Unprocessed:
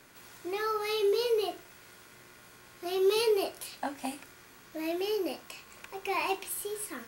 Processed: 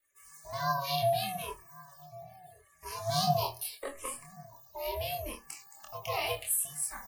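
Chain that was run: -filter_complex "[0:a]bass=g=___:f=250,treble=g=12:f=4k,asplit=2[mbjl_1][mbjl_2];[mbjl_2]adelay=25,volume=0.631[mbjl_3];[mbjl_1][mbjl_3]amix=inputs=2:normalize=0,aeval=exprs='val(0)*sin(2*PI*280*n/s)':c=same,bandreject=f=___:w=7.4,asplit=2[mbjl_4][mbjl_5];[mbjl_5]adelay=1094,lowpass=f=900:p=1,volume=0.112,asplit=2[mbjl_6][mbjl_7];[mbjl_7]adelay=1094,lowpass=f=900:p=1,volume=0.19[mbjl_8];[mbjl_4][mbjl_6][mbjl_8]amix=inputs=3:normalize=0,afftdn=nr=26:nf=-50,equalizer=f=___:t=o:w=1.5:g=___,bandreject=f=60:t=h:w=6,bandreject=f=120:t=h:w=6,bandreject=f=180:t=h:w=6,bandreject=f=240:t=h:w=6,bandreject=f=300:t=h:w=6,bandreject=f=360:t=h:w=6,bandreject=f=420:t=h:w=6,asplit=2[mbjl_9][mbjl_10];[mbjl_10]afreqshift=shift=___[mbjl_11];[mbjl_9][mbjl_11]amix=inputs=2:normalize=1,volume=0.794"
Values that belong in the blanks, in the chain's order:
-3, 1.4k, 1.1k, 7.5, -0.77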